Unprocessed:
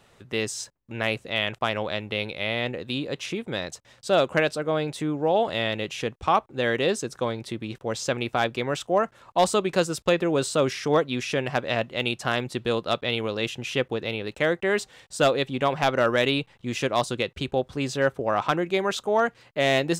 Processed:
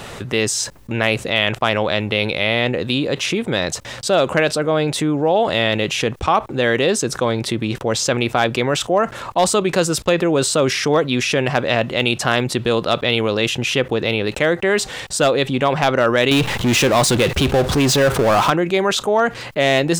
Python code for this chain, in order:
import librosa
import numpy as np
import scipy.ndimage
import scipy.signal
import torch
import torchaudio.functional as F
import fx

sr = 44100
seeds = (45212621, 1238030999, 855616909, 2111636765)

y = fx.power_curve(x, sr, exponent=0.5, at=(16.31, 18.5))
y = fx.env_flatten(y, sr, amount_pct=50)
y = y * 10.0 ** (3.5 / 20.0)